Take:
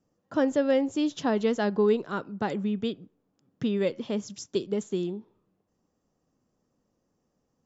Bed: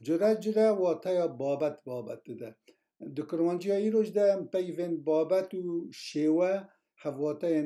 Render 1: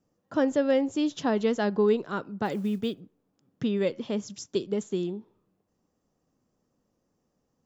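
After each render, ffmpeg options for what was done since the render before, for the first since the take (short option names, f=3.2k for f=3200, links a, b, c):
-filter_complex "[0:a]asplit=3[a][b][c];[a]afade=t=out:st=2.44:d=0.02[d];[b]acrusher=bits=8:mode=log:mix=0:aa=0.000001,afade=t=in:st=2.44:d=0.02,afade=t=out:st=2.99:d=0.02[e];[c]afade=t=in:st=2.99:d=0.02[f];[d][e][f]amix=inputs=3:normalize=0"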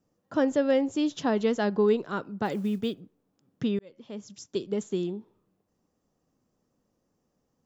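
-filter_complex "[0:a]asplit=2[a][b];[a]atrim=end=3.79,asetpts=PTS-STARTPTS,afade=t=out:st=3.786:d=0.004:c=hsin[c];[b]atrim=start=3.79,asetpts=PTS-STARTPTS,afade=t=in:d=1.04[d];[c][d]concat=n=2:v=0:a=1"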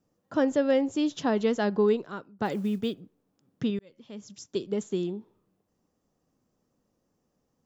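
-filter_complex "[0:a]asettb=1/sr,asplit=3[a][b][c];[a]atrim=end=3.704[d];[b]atrim=start=3.7:end=4.22,asetpts=PTS-STARTPTS,afade=t=in:d=0.004:c=qsin,afade=t=out:st=0.516:d=0.004:c=qsin,equalizer=f=580:w=0.48:g=-5[e];[c]atrim=start=4.216[f];[d][e]acrossfade=d=0.004:c1=hsin:c2=qsin[g];[g][f]acrossfade=d=0.004:c1=qsin:c2=hsin,asplit=2[h][i];[h]atrim=end=2.39,asetpts=PTS-STARTPTS,afade=t=out:st=1.86:d=0.53:silence=0.0749894[j];[i]atrim=start=2.39,asetpts=PTS-STARTPTS,afade=t=in:d=0.004:c=hsin:silence=0.0749894[k];[j][k]concat=n=2:v=0:a=1"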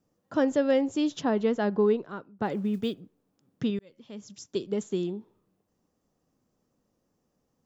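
-filter_complex "[0:a]asettb=1/sr,asplit=3[a][b][c];[a]atrim=end=1.214[d];[b]atrim=start=1.21:end=2.74,asetpts=PTS-STARTPTS,afade=t=in:d=0.004:c=qsin,afade=t=out:st=1.526:d=0.004:c=qsin,highshelf=f=3.9k:g=-12[e];[c]atrim=start=2.736[f];[d][e]acrossfade=d=0.004:c1=hsin:c2=qsin[g];[g][f]acrossfade=d=0.004:c1=qsin:c2=hsin"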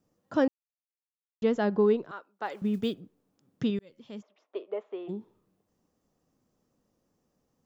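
-filter_complex "[0:a]asettb=1/sr,asplit=3[a][b][c];[a]atrim=end=2.114[d];[b]atrim=start=2.11:end=2.62,asetpts=PTS-STARTPTS,afade=t=in:d=0.004:c=qsin,afade=t=out:st=0.506:d=0.004:c=qsin,highpass=700[e];[c]atrim=start=2.616[f];[d][e]acrossfade=d=0.004:c1=hsin:c2=qsin[g];[g][f]acrossfade=d=0.004:c1=qsin:c2=hsin,asplit=3[h][i][j];[h]afade=t=out:st=4.21:d=0.02[k];[i]highpass=f=460:w=0.5412,highpass=f=460:w=1.3066,equalizer=f=640:t=q:w=4:g=8,equalizer=f=1.1k:t=q:w=4:g=4,equalizer=f=1.6k:t=q:w=4:g=-7,lowpass=f=2.3k:w=0.5412,lowpass=f=2.3k:w=1.3066,afade=t=in:st=4.21:d=0.02,afade=t=out:st=5.08:d=0.02[l];[j]afade=t=in:st=5.08:d=0.02[m];[k][l][m]amix=inputs=3:normalize=0,asplit=3[n][o][p];[n]atrim=end=0.48,asetpts=PTS-STARTPTS,afade=t=out:st=0.476:d=0.004:c=hsin[q];[o]atrim=start=0.48:end=1.42,asetpts=PTS-STARTPTS,volume=0[r];[p]atrim=start=1.42,asetpts=PTS-STARTPTS,afade=t=in:d=0.004:c=hsin[s];[q][r][s]concat=n=3:v=0:a=1"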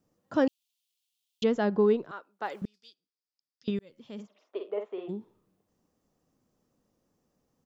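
-filter_complex "[0:a]asettb=1/sr,asplit=3[a][b][c];[a]atrim=end=0.474[d];[b]atrim=start=0.47:end=1.44,asetpts=PTS-STARTPTS,afade=t=in:d=0.004:c=qsin,afade=t=out:st=0.966:d=0.004:c=qsin,highshelf=f=2.2k:t=q:w=3:g=13[e];[c]atrim=start=1.436[f];[d][e]acrossfade=d=0.004:c1=hsin:c2=qsin[g];[g][f]acrossfade=d=0.004:c1=qsin:c2=hsin,asettb=1/sr,asplit=3[h][i][j];[h]atrim=end=2.654[k];[i]atrim=start=2.65:end=3.68,asetpts=PTS-STARTPTS,afade=t=in:d=0.004:c=qsin,afade=t=out:st=1.026:d=0.004:c=qsin,bandpass=f=4.9k:t=q:w=7.3[l];[j]atrim=start=3.676[m];[k][l]acrossfade=d=0.004:c1=hsin:c2=qsin[n];[n][m]acrossfade=d=0.004:c1=qsin:c2=hsin,asplit=3[o][p][q];[o]afade=t=out:st=4.18:d=0.02[r];[p]asplit=2[s][t];[t]adelay=49,volume=-5dB[u];[s][u]amix=inputs=2:normalize=0,afade=t=in:st=4.18:d=0.02,afade=t=out:st=5.05:d=0.02[v];[q]afade=t=in:st=5.05:d=0.02[w];[r][v][w]amix=inputs=3:normalize=0"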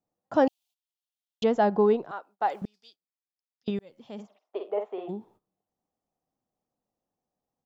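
-af "agate=range=-15dB:threshold=-58dB:ratio=16:detection=peak,equalizer=f=760:t=o:w=0.64:g=12"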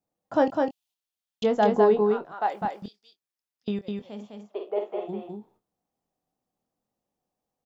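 -filter_complex "[0:a]asplit=2[a][b];[b]adelay=24,volume=-9.5dB[c];[a][c]amix=inputs=2:normalize=0,asplit=2[d][e];[e]aecho=0:1:205:0.668[f];[d][f]amix=inputs=2:normalize=0"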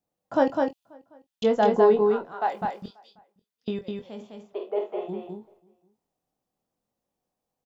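-filter_complex "[0:a]asplit=2[a][b];[b]adelay=22,volume=-9dB[c];[a][c]amix=inputs=2:normalize=0,asplit=2[d][e];[e]adelay=536.4,volume=-28dB,highshelf=f=4k:g=-12.1[f];[d][f]amix=inputs=2:normalize=0"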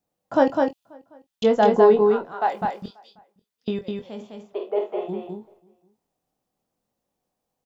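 -af "volume=3.5dB"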